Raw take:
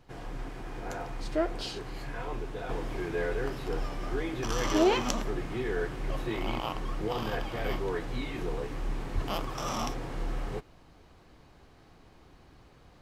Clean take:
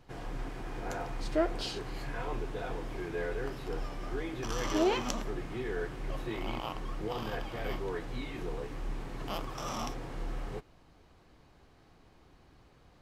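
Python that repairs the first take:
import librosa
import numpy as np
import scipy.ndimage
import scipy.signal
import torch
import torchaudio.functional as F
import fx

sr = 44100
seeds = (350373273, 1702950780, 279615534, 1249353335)

y = fx.highpass(x, sr, hz=140.0, slope=24, at=(9.14, 9.26), fade=0.02)
y = fx.gain(y, sr, db=fx.steps((0.0, 0.0), (2.69, -4.0)))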